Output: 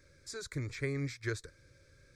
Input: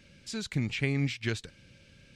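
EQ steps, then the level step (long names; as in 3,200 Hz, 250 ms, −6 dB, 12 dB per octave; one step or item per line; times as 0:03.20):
phaser with its sweep stopped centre 780 Hz, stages 6
−1.0 dB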